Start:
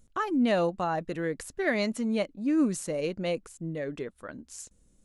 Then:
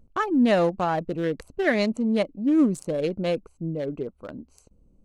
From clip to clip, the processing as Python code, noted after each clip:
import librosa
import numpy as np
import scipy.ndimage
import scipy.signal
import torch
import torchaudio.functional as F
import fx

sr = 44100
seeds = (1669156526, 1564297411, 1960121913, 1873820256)

y = fx.wiener(x, sr, points=25)
y = y * librosa.db_to_amplitude(5.5)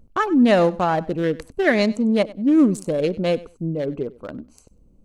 y = fx.echo_feedback(x, sr, ms=97, feedback_pct=17, wet_db=-20.0)
y = y * librosa.db_to_amplitude(4.5)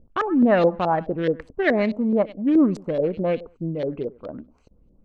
y = fx.filter_lfo_lowpass(x, sr, shape='saw_up', hz=4.7, low_hz=460.0, high_hz=4700.0, q=1.8)
y = y * librosa.db_to_amplitude(-3.0)